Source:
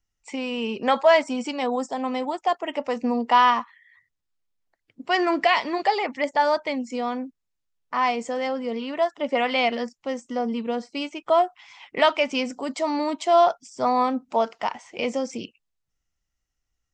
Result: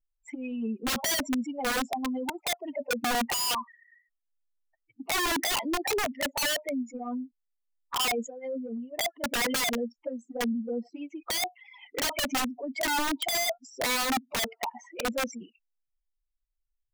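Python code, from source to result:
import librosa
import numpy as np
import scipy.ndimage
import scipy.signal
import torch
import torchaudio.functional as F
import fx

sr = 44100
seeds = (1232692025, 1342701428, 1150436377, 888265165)

y = fx.spec_expand(x, sr, power=3.2)
y = fx.dynamic_eq(y, sr, hz=3800.0, q=0.81, threshold_db=-43.0, ratio=4.0, max_db=6)
y = fx.env_flanger(y, sr, rest_ms=6.7, full_db=-21.0)
y = (np.mod(10.0 ** (23.0 / 20.0) * y + 1.0, 2.0) - 1.0) / 10.0 ** (23.0 / 20.0)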